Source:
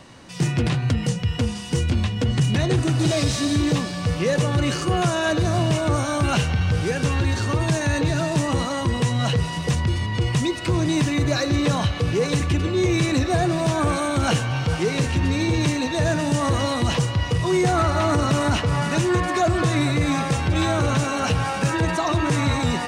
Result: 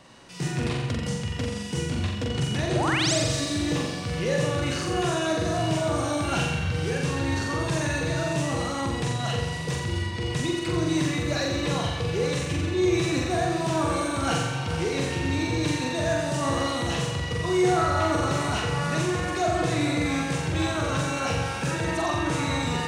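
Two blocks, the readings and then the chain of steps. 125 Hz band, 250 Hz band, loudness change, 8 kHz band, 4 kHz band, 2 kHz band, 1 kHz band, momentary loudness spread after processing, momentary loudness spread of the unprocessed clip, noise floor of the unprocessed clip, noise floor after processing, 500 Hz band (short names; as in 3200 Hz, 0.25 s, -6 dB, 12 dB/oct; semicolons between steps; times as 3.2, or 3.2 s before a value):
-7.0 dB, -4.5 dB, -4.5 dB, -2.0 dB, -2.5 dB, -2.5 dB, -3.0 dB, 5 LU, 3 LU, -29 dBFS, -31 dBFS, -3.0 dB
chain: low shelf 200 Hz -4.5 dB; painted sound rise, 2.75–3.14, 530–8900 Hz -23 dBFS; on a send: flutter echo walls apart 7.5 m, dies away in 0.92 s; on the sum: gain -6 dB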